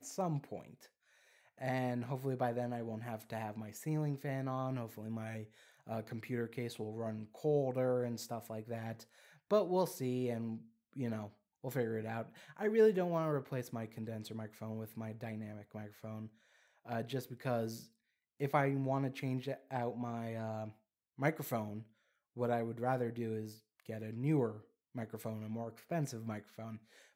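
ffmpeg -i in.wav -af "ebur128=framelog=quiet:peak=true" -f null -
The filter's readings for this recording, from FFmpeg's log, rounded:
Integrated loudness:
  I:         -39.0 LUFS
  Threshold: -49.6 LUFS
Loudness range:
  LRA:         6.7 LU
  Threshold: -59.4 LUFS
  LRA low:   -43.3 LUFS
  LRA high:  -36.6 LUFS
True peak:
  Peak:      -16.7 dBFS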